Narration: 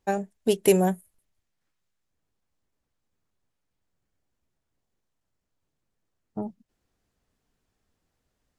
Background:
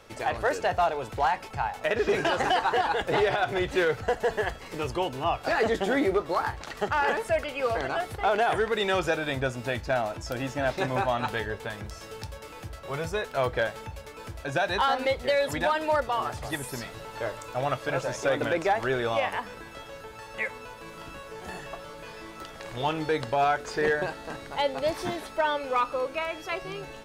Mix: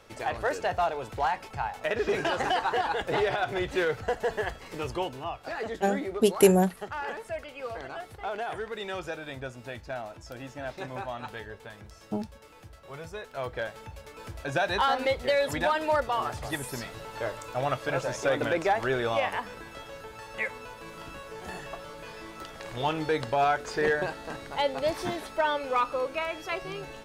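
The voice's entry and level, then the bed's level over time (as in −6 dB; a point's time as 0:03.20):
5.75 s, +0.5 dB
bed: 0:05.02 −2.5 dB
0:05.34 −9.5 dB
0:13.19 −9.5 dB
0:14.42 −0.5 dB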